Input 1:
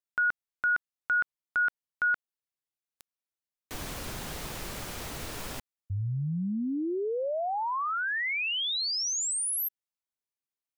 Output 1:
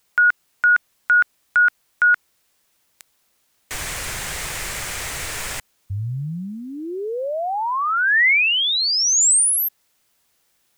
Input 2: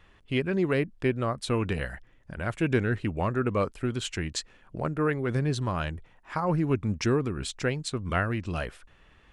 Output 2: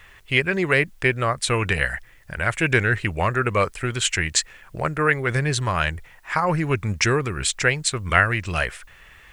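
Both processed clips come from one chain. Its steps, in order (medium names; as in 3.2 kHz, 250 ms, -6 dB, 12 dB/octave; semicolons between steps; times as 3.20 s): ten-band graphic EQ 250 Hz -9 dB, 2 kHz +9 dB, 8 kHz +9 dB; word length cut 12-bit, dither triangular; trim +6.5 dB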